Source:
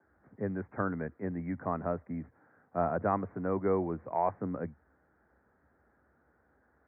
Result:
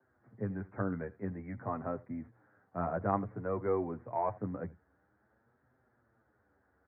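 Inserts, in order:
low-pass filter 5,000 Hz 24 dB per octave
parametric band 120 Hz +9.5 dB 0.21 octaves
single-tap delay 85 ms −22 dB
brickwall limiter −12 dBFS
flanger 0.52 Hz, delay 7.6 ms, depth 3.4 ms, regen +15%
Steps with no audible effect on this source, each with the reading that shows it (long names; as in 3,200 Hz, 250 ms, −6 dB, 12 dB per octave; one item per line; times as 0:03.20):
low-pass filter 5,000 Hz: nothing at its input above 1,600 Hz
brickwall limiter −12 dBFS: peak of its input −15.0 dBFS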